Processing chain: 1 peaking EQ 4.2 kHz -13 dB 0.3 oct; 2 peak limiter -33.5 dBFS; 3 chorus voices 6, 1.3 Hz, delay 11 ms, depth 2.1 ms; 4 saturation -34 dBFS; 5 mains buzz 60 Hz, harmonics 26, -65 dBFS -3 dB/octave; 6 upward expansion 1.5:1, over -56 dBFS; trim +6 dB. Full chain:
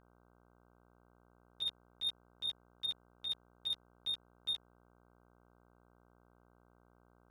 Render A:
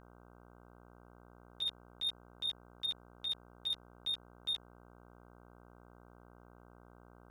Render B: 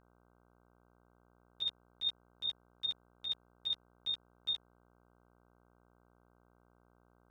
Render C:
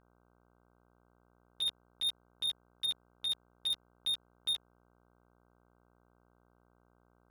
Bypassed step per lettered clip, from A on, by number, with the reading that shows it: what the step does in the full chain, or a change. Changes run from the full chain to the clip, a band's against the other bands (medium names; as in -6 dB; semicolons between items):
6, 8 kHz band -5.5 dB; 4, distortion -20 dB; 2, mean gain reduction 7.0 dB